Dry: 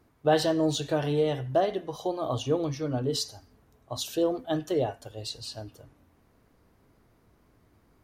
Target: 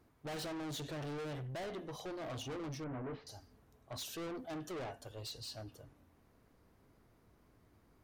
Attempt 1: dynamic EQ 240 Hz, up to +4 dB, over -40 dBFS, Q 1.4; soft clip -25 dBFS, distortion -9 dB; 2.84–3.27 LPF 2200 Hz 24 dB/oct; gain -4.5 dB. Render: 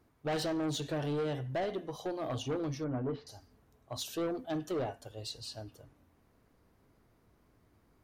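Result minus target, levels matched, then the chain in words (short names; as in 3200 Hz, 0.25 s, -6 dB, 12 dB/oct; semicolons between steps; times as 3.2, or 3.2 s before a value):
soft clip: distortion -6 dB
dynamic EQ 240 Hz, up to +4 dB, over -40 dBFS, Q 1.4; soft clip -36 dBFS, distortion -3 dB; 2.84–3.27 LPF 2200 Hz 24 dB/oct; gain -4.5 dB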